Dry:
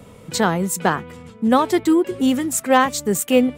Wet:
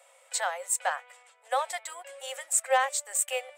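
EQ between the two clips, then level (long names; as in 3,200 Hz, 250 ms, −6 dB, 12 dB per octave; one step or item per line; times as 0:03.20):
Chebyshev high-pass with heavy ripple 520 Hz, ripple 6 dB
parametric band 8,100 Hz +12.5 dB 0.44 octaves
−6.5 dB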